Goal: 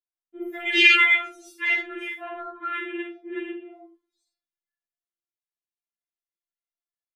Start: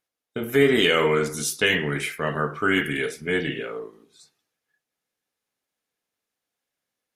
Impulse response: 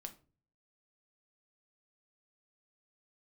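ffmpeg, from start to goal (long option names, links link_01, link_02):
-filter_complex "[0:a]asettb=1/sr,asplit=3[link_01][link_02][link_03];[link_01]atrim=end=2.484[link_04];[link_02]atrim=start=2.48:end=3.71,asetpts=PTS-STARTPTS,afade=type=in:duration=0.004:curve=qsin,afade=type=out:start_time=1.226:duration=0.004:curve=qsin,highpass=frequency=110:width=0.5412,highpass=frequency=110:width=1.3066,equalizer=frequency=220:width_type=q:width=4:gain=-9,equalizer=frequency=470:width_type=q:width=4:gain=8,equalizer=frequency=690:width_type=q:width=4:gain=-8,equalizer=frequency=1100:width_type=q:width=4:gain=6,equalizer=frequency=1600:width_type=q:width=4:gain=-5,equalizer=frequency=2700:width_type=q:width=4:gain=4,lowpass=frequency=3200:width=0.5412,lowpass=frequency=3200:width=1.3066[link_05];[link_03]atrim=start=3.706[link_06];[link_04][link_05]acrossfade=duration=0.004:curve1=hsin:curve2=qsin[link_07];[link_07][link_06]acrossfade=duration=0.004:curve1=qsin:curve2=hsin,aecho=1:1:47|79:0.501|0.316,afwtdn=0.0501,asettb=1/sr,asplit=3[link_08][link_09][link_10];[link_08]atrim=end=0.674[link_11];[link_09]atrim=start=0.67:end=1.17,asetpts=PTS-STARTPTS,afade=type=in:duration=0.004:curve=qsin,afade=type=out:start_time=0.496:duration=0.004:curve=qsin,highshelf=frequency=1500:width_type=q:width=1.5:gain=12.5[link_12];[link_10]atrim=start=1.166[link_13];[link_11][link_12]acrossfade=duration=0.004:curve1=hsin:curve2=qsin[link_14];[link_14][link_13]acrossfade=duration=0.004:curve1=qsin:curve2=hsin[link_15];[1:a]atrim=start_sample=2205,atrim=end_sample=4410[link_16];[link_15][link_16]afir=irnorm=-1:irlink=0,afftfilt=real='re*4*eq(mod(b,16),0)':imag='im*4*eq(mod(b,16),0)':win_size=2048:overlap=0.75"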